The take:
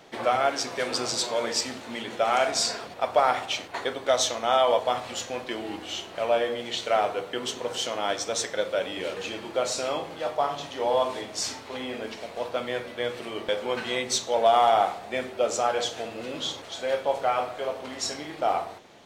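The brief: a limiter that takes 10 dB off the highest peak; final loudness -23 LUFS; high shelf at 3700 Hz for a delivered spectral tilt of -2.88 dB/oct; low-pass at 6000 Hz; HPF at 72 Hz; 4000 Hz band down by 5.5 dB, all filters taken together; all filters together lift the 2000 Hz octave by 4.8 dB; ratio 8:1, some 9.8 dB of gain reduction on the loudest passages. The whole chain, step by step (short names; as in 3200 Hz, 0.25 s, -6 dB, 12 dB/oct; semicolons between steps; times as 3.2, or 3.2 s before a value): HPF 72 Hz; LPF 6000 Hz; bell 2000 Hz +9 dB; high shelf 3700 Hz -5.5 dB; bell 4000 Hz -6.5 dB; compressor 8:1, threshold -25 dBFS; gain +11 dB; limiter -12.5 dBFS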